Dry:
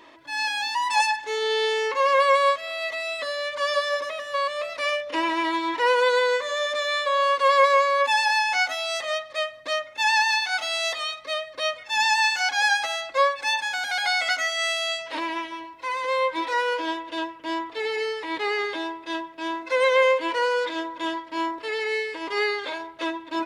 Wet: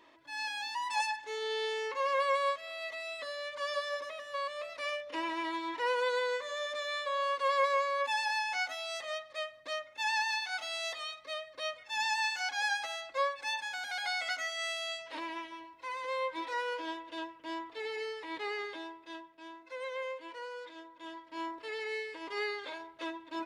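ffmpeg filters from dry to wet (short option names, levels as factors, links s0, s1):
-af "volume=0.794,afade=t=out:st=18.43:d=1.1:silence=0.354813,afade=t=in:st=20.99:d=0.52:silence=0.354813"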